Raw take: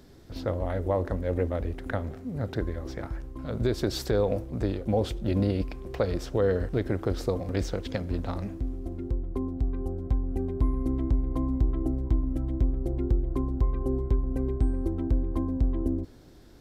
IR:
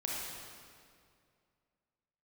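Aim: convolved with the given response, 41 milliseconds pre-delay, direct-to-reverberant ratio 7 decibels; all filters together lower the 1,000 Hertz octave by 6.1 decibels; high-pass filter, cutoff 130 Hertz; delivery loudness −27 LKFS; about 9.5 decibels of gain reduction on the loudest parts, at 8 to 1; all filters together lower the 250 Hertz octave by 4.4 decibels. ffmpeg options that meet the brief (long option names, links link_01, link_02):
-filter_complex "[0:a]highpass=130,equalizer=frequency=250:width_type=o:gain=-4.5,equalizer=frequency=1000:width_type=o:gain=-8.5,acompressor=threshold=-34dB:ratio=8,asplit=2[link_01][link_02];[1:a]atrim=start_sample=2205,adelay=41[link_03];[link_02][link_03]afir=irnorm=-1:irlink=0,volume=-10.5dB[link_04];[link_01][link_04]amix=inputs=2:normalize=0,volume=12.5dB"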